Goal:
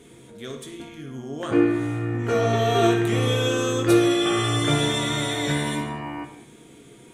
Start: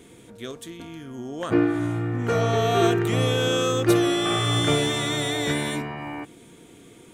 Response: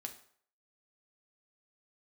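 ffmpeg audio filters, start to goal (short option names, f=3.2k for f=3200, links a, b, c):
-filter_complex "[1:a]atrim=start_sample=2205,atrim=end_sample=6174,asetrate=24696,aresample=44100[a];[0:a][a]afir=irnorm=-1:irlink=0"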